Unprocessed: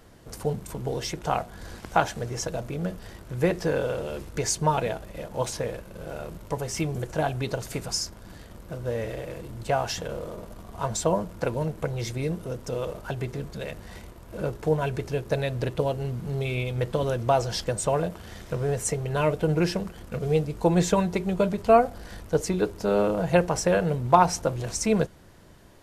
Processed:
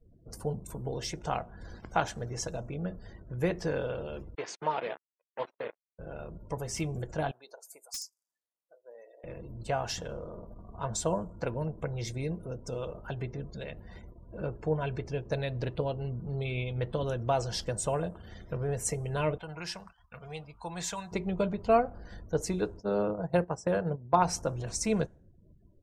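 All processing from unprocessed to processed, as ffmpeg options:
ffmpeg -i in.wav -filter_complex "[0:a]asettb=1/sr,asplit=3[link_01][link_02][link_03];[link_01]atrim=end=4.354[link_04];[link_02]atrim=start=4.35:end=5.99,asetpts=PTS-STARTPTS,afade=type=in:duration=0.004:curve=qsin,afade=type=out:start_time=1.636:duration=0.004:curve=qsin,agate=range=-33dB:threshold=-29dB:ratio=3:release=100:detection=peak,acrusher=bits=4:mix=0:aa=0.5,highpass=340,lowpass=3100[link_05];[link_03]atrim=start=5.986[link_06];[link_04][link_05]acrossfade=duration=0.004:curve1=hsin:curve2=qsin[link_07];[link_07][link_06]acrossfade=duration=0.004:curve1=qsin:curve2=hsin,asettb=1/sr,asplit=3[link_08][link_09][link_10];[link_08]atrim=end=7.314[link_11];[link_09]atrim=start=7.31:end=9.24,asetpts=PTS-STARTPTS,afade=type=in:duration=0.004:curve=qsin,afade=type=out:start_time=1.926:duration=0.004:curve=qsin,highpass=970,equalizer=frequency=2400:width_type=o:width=2.3:gain=-13.5,aeval=exprs='(mod(17.8*val(0)+1,2)-1)/17.8':channel_layout=same[link_12];[link_10]atrim=start=9.236[link_13];[link_11][link_12]acrossfade=duration=0.004:curve1=hsin:curve2=qsin[link_14];[link_14][link_13]acrossfade=duration=0.004:curve1=qsin:curve2=hsin,asettb=1/sr,asplit=3[link_15][link_16][link_17];[link_15]atrim=end=19.384[link_18];[link_16]atrim=start=19.38:end=21.12,asetpts=PTS-STARTPTS,afade=type=in:duration=0.004:curve=qsin,afade=type=out:start_time=1.736:duration=0.004:curve=qsin,agate=range=-33dB:threshold=-40dB:ratio=3:release=100:detection=peak,lowshelf=frequency=610:width_type=q:width=1.5:gain=-13,acrossover=split=470|3000[link_19][link_20][link_21];[link_20]acompressor=threshold=-38dB:ratio=2:attack=3.2:release=140:knee=2.83:detection=peak[link_22];[link_19][link_22][link_21]amix=inputs=3:normalize=0[link_23];[link_17]atrim=start=21.116[link_24];[link_18][link_23]acrossfade=duration=0.004:curve1=hsin:curve2=qsin[link_25];[link_25][link_24]acrossfade=duration=0.004:curve1=qsin:curve2=hsin,asettb=1/sr,asplit=3[link_26][link_27][link_28];[link_26]atrim=end=22.804[link_29];[link_27]atrim=start=22.8:end=24.22,asetpts=PTS-STARTPTS,afade=type=in:duration=0.004:curve=qsin,afade=type=out:start_time=1.416:duration=0.004:curve=qsin,highpass=78,equalizer=frequency=2600:width_type=o:width=1.1:gain=-6.5,agate=range=-12dB:threshold=-27dB:ratio=16:release=100:detection=peak[link_30];[link_28]atrim=start=24.216[link_31];[link_29][link_30]acrossfade=duration=0.004:curve1=hsin:curve2=qsin[link_32];[link_32][link_31]acrossfade=duration=0.004:curve1=qsin:curve2=hsin,highshelf=frequency=2400:gain=3.5,afftdn=noise_reduction=35:noise_floor=-46,lowshelf=frequency=190:gain=3.5,volume=-7dB" out.wav

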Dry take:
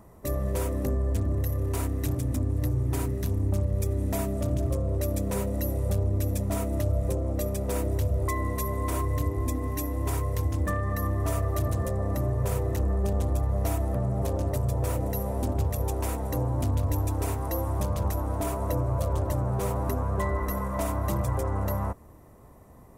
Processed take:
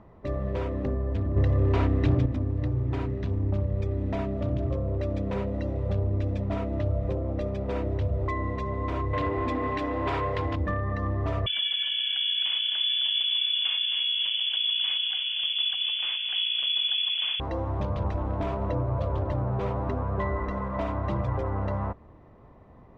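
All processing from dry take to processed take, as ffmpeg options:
ffmpeg -i in.wav -filter_complex "[0:a]asettb=1/sr,asplit=3[link_01][link_02][link_03];[link_01]atrim=end=1.364[link_04];[link_02]atrim=start=1.36:end=2.26,asetpts=PTS-STARTPTS,afade=type=in:duration=0.004:curve=qsin,afade=type=out:start_time=0.896:duration=0.004:curve=qsin,lowpass=7700,acontrast=73[link_05];[link_03]atrim=start=2.256[link_06];[link_04][link_05]acrossfade=duration=0.004:curve1=hsin:curve2=qsin[link_07];[link_07][link_06]acrossfade=duration=0.004:curve1=qsin:curve2=hsin,asettb=1/sr,asplit=3[link_08][link_09][link_10];[link_08]atrim=end=9.134[link_11];[link_09]atrim=start=9.13:end=10.56,asetpts=PTS-STARTPTS,afade=type=in:duration=0.004:curve=qsin,afade=type=out:start_time=1.426:duration=0.004:curve=qsin,equalizer=frequency=6100:width=6.8:gain=-7.5,asplit=2[link_12][link_13];[link_13]highpass=frequency=720:poles=1,volume=18dB,asoftclip=type=tanh:threshold=-17dB[link_14];[link_12][link_14]amix=inputs=2:normalize=0,lowpass=frequency=6900:poles=1,volume=-6dB[link_15];[link_10]atrim=start=10.556[link_16];[link_11][link_15]acrossfade=duration=0.004:curve1=hsin:curve2=qsin[link_17];[link_17][link_16]acrossfade=duration=0.004:curve1=qsin:curve2=hsin,asettb=1/sr,asplit=3[link_18][link_19][link_20];[link_18]atrim=end=11.464[link_21];[link_19]atrim=start=11.46:end=17.4,asetpts=PTS-STARTPTS,afade=type=in:duration=0.004:curve=qsin,afade=type=out:start_time=5.936:duration=0.004:curve=qsin,asplit=5[link_22][link_23][link_24][link_25][link_26];[link_23]adelay=262,afreqshift=58,volume=-8dB[link_27];[link_24]adelay=524,afreqshift=116,volume=-17.4dB[link_28];[link_25]adelay=786,afreqshift=174,volume=-26.7dB[link_29];[link_26]adelay=1048,afreqshift=232,volume=-36.1dB[link_30];[link_22][link_27][link_28][link_29][link_30]amix=inputs=5:normalize=0,atrim=end_sample=261954,lowpass=frequency=3000:width_type=q:width=0.5098,lowpass=frequency=3000:width_type=q:width=0.6013,lowpass=frequency=3000:width_type=q:width=0.9,lowpass=frequency=3000:width_type=q:width=2.563,afreqshift=-3500[link_31];[link_20]atrim=start=17.396[link_32];[link_21][link_31]acrossfade=duration=0.004:curve1=hsin:curve2=qsin[link_33];[link_33][link_32]acrossfade=duration=0.004:curve1=qsin:curve2=hsin,asettb=1/sr,asplit=3[link_34][link_35][link_36];[link_34]atrim=end=18.144[link_37];[link_35]atrim=start=18.14:end=18.7,asetpts=PTS-STARTPTS,afade=type=in:duration=0.004:curve=qsin,afade=type=out:start_time=0.556:duration=0.004:curve=qsin,asplit=2[link_38][link_39];[link_39]adelay=25,volume=-12dB[link_40];[link_38][link_40]amix=inputs=2:normalize=0,atrim=end_sample=24696,asoftclip=type=hard:threshold=-22.5dB,bass=frequency=250:gain=3,treble=frequency=4000:gain=1[link_41];[link_36]atrim=start=18.696[link_42];[link_37][link_41]acrossfade=duration=0.004:curve1=hsin:curve2=qsin[link_43];[link_43][link_42]acrossfade=duration=0.004:curve1=qsin:curve2=hsin,lowpass=frequency=3600:width=0.5412,lowpass=frequency=3600:width=1.3066,equalizer=frequency=65:width_type=o:width=0.34:gain=-3" out.wav

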